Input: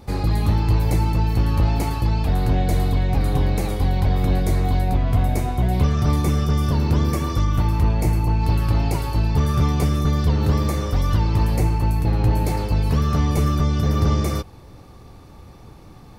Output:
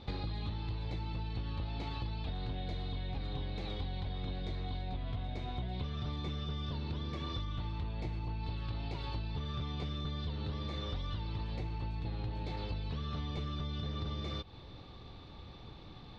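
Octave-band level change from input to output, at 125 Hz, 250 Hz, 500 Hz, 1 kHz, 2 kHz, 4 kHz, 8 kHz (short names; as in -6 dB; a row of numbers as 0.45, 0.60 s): -19.5 dB, -19.0 dB, -18.5 dB, -18.5 dB, -16.0 dB, -8.5 dB, under -25 dB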